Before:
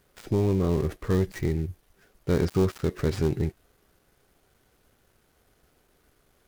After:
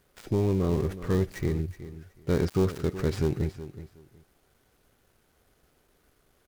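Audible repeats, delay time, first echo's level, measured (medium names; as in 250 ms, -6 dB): 2, 371 ms, -14.0 dB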